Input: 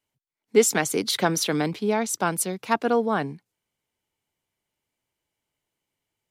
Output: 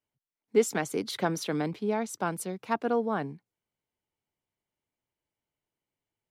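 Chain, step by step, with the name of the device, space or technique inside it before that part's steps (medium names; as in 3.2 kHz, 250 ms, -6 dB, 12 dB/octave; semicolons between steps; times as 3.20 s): behind a face mask (treble shelf 2.3 kHz -8 dB); trim -5 dB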